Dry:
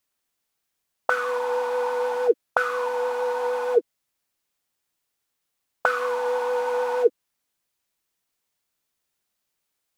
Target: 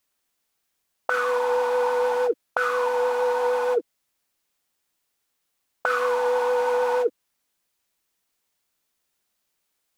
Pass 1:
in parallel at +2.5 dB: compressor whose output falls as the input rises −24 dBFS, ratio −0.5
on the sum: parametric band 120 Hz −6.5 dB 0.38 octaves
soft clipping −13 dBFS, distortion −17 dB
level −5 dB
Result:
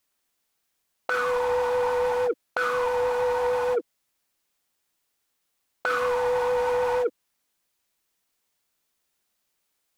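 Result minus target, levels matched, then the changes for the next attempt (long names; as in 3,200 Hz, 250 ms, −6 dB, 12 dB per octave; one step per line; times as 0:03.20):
soft clipping: distortion +16 dB
change: soft clipping −2.5 dBFS, distortion −33 dB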